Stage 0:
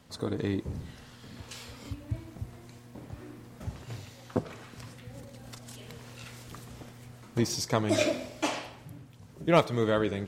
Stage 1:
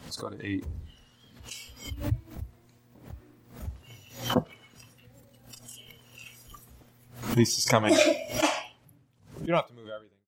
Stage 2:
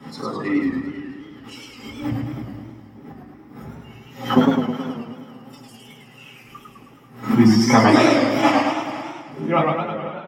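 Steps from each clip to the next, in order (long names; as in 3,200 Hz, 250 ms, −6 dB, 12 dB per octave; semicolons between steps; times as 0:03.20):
fade-out on the ending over 1.89 s; noise reduction from a noise print of the clip's start 16 dB; background raised ahead of every attack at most 120 dB per second; level +5.5 dB
repeating echo 489 ms, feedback 24%, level −16 dB; convolution reverb RT60 0.25 s, pre-delay 3 ms, DRR −6 dB; feedback echo with a swinging delay time 106 ms, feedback 62%, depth 147 cents, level −3 dB; level −9 dB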